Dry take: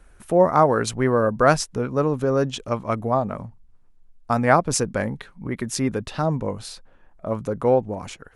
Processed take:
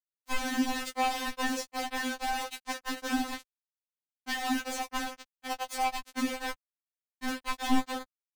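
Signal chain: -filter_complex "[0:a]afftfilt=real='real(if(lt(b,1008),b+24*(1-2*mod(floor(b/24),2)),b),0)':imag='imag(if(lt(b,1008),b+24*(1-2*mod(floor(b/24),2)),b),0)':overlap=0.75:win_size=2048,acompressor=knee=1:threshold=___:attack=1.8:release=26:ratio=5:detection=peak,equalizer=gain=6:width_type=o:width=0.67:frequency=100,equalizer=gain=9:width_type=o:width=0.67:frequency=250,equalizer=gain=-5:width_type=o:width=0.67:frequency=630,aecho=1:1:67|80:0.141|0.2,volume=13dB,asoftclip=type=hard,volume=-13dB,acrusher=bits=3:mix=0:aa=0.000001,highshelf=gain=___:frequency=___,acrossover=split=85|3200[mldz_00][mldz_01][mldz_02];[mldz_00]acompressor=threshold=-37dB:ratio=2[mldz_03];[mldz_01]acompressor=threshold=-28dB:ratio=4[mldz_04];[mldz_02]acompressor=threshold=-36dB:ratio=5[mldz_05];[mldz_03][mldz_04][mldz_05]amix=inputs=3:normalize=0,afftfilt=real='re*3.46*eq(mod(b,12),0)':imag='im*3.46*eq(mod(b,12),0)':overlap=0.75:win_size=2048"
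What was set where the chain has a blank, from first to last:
-21dB, -8.5, 10000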